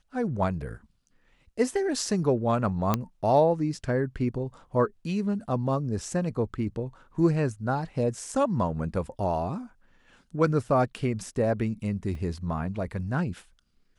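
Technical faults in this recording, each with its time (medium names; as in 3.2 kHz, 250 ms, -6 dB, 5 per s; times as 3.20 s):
2.94 s: pop -10 dBFS
12.15 s: dropout 2.2 ms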